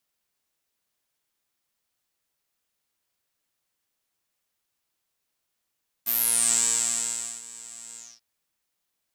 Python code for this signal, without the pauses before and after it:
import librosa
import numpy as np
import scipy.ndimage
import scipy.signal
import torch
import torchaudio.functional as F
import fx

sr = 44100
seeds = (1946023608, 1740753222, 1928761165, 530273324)

y = fx.sub_patch_pwm(sr, seeds[0], note=58, wave2='saw', interval_st=0, detune_cents=16, level2_db=-9.0, sub_db=-1.5, noise_db=-30.0, kind='bandpass', cutoff_hz=5100.0, q=11.0, env_oct=1.5, env_decay_s=0.46, env_sustain_pct=40, attack_ms=21.0, decay_s=1.33, sustain_db=-23.5, release_s=0.24, note_s=1.9, lfo_hz=1.2, width_pct=48, width_swing_pct=14)